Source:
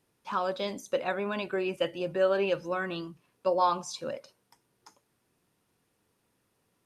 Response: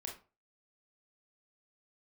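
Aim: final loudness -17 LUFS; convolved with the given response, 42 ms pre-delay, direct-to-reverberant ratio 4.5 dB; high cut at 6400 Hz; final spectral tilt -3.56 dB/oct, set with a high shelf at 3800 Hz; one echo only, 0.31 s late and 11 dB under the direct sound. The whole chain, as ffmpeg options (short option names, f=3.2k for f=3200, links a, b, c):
-filter_complex "[0:a]lowpass=6.4k,highshelf=f=3.8k:g=-7.5,aecho=1:1:310:0.282,asplit=2[a][b];[1:a]atrim=start_sample=2205,adelay=42[c];[b][c]afir=irnorm=-1:irlink=0,volume=-2.5dB[d];[a][d]amix=inputs=2:normalize=0,volume=12.5dB"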